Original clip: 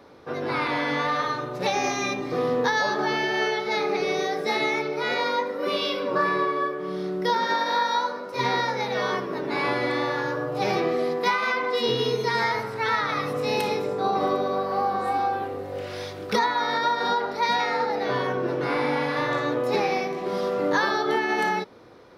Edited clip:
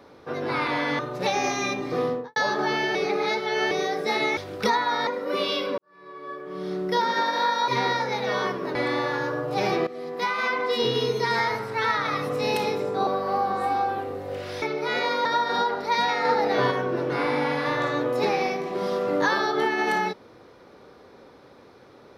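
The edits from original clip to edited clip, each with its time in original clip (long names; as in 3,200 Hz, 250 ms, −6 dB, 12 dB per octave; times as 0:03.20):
0:00.99–0:01.39: remove
0:02.40–0:02.76: fade out and dull
0:03.35–0:04.11: reverse
0:04.77–0:05.40: swap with 0:16.06–0:16.76
0:06.11–0:07.06: fade in quadratic
0:08.01–0:08.36: remove
0:09.43–0:09.79: remove
0:10.91–0:11.54: fade in, from −17 dB
0:14.11–0:14.51: remove
0:17.76–0:18.22: clip gain +3.5 dB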